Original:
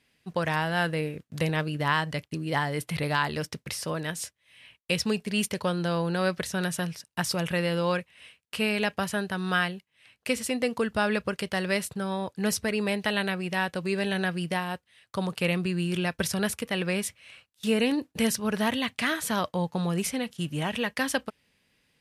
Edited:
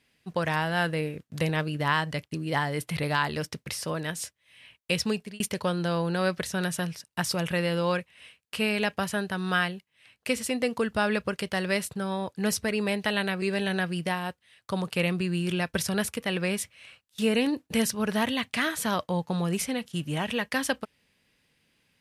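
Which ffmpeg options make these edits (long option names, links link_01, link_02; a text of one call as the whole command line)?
ffmpeg -i in.wav -filter_complex "[0:a]asplit=3[link_01][link_02][link_03];[link_01]atrim=end=5.4,asetpts=PTS-STARTPTS,afade=type=out:start_time=5:duration=0.4:curve=qsin[link_04];[link_02]atrim=start=5.4:end=13.422,asetpts=PTS-STARTPTS,afade=type=in:duration=0.004:curve=hsin[link_05];[link_03]atrim=start=13.868[link_06];[link_04][link_05]concat=n=2:v=0:a=1[link_07];[link_07][link_06]acrossfade=duration=0.004:curve1=hsin:curve2=hsin" out.wav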